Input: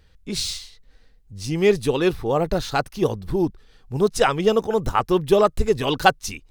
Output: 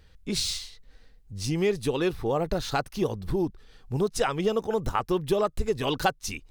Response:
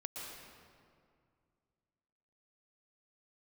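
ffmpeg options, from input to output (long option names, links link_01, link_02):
-af "acompressor=threshold=-25dB:ratio=2.5"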